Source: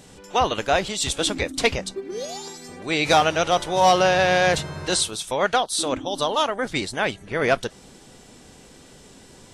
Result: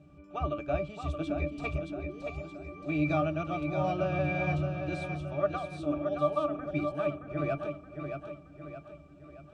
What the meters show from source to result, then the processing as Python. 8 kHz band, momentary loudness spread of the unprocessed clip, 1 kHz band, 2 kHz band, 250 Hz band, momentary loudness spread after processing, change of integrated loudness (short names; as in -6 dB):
under -30 dB, 14 LU, -14.5 dB, -14.5 dB, -3.5 dB, 16 LU, -11.0 dB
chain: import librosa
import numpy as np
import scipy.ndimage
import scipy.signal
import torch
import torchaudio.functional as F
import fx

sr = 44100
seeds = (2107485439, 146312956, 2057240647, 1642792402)

y = fx.octave_resonator(x, sr, note='D', decay_s=0.14)
y = fx.echo_feedback(y, sr, ms=622, feedback_pct=47, wet_db=-6.5)
y = y * 10.0 ** (2.5 / 20.0)